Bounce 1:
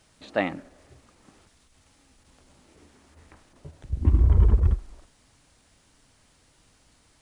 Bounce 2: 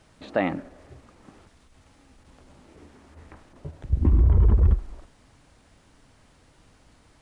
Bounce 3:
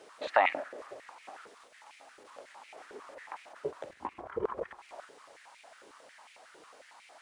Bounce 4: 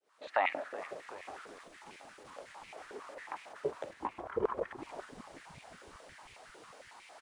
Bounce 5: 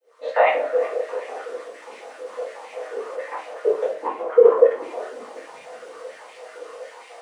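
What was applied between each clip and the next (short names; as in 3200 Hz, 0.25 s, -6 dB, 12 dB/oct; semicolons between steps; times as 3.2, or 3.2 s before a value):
high shelf 3000 Hz -10.5 dB; limiter -17 dBFS, peak gain reduction 8.5 dB; gain +6 dB
compressor 6:1, threshold -21 dBFS, peak gain reduction 7.5 dB; stepped high-pass 11 Hz 430–2300 Hz; gain +2 dB
opening faded in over 0.82 s; frequency-shifting echo 0.376 s, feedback 59%, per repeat -98 Hz, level -16 dB; gain +1 dB
resonant high-pass 480 Hz, resonance Q 4.9; shoebox room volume 31 m³, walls mixed, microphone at 1.7 m; gain -1 dB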